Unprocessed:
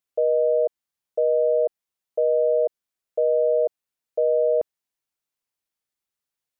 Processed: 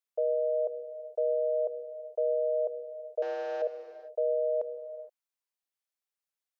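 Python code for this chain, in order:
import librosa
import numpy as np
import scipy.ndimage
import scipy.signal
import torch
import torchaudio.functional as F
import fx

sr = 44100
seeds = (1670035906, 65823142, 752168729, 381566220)

y = fx.delta_mod(x, sr, bps=32000, step_db=-42.5, at=(3.22, 3.62))
y = scipy.signal.sosfilt(scipy.signal.butter(4, 440.0, 'highpass', fs=sr, output='sos'), y)
y = fx.rev_gated(y, sr, seeds[0], gate_ms=490, shape='flat', drr_db=10.5)
y = y * 10.0 ** (-6.5 / 20.0)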